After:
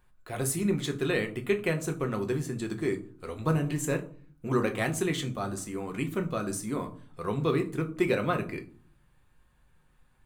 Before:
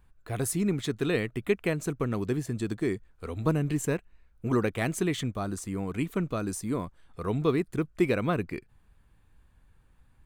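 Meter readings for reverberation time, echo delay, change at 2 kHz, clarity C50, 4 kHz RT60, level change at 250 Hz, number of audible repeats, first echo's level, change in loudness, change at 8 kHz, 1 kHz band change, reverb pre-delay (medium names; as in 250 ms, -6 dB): 0.45 s, no echo, +1.5 dB, 14.5 dB, 0.25 s, -1.5 dB, no echo, no echo, -0.5 dB, +1.0 dB, +1.5 dB, 6 ms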